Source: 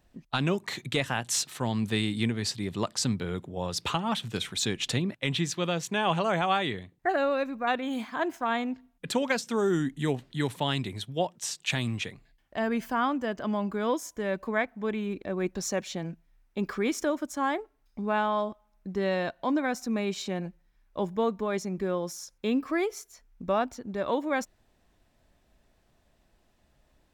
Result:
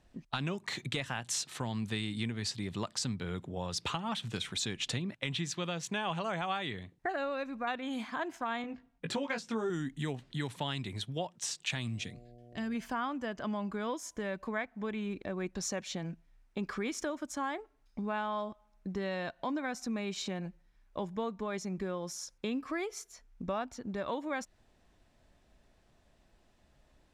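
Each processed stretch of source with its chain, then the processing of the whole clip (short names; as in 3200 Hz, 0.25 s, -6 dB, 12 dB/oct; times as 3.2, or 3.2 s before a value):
8.62–9.7 high shelf 4200 Hz -9.5 dB + doubler 18 ms -4.5 dB
11.87–12.74 EQ curve 260 Hz 0 dB, 650 Hz -15 dB, 5300 Hz 0 dB + buzz 120 Hz, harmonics 6, -55 dBFS -3 dB/oct
whole clip: LPF 9800 Hz 12 dB/oct; dynamic EQ 410 Hz, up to -4 dB, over -39 dBFS, Q 0.76; compressor 2.5:1, threshold -34 dBFS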